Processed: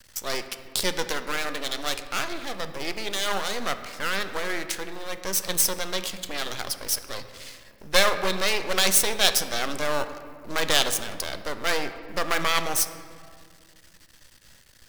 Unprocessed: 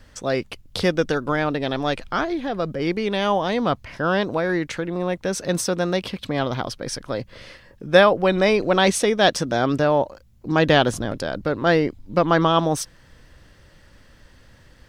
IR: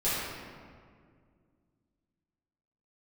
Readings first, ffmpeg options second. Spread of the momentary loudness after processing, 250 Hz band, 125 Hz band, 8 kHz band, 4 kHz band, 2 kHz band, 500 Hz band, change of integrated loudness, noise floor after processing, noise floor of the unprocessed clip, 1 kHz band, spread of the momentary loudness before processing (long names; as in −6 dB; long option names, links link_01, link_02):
12 LU, −14.0 dB, −15.5 dB, +6.5 dB, +2.0 dB, −2.5 dB, −10.5 dB, −4.0 dB, −54 dBFS, −52 dBFS, −7.0 dB, 10 LU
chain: -filter_complex "[0:a]aeval=exprs='max(val(0),0)':channel_layout=same,lowshelf=frequency=430:gain=-3,crystalizer=i=6:c=0,asplit=2[link_01][link_02];[1:a]atrim=start_sample=2205,highshelf=frequency=5400:gain=-7[link_03];[link_02][link_03]afir=irnorm=-1:irlink=0,volume=-17.5dB[link_04];[link_01][link_04]amix=inputs=2:normalize=0,volume=-6dB"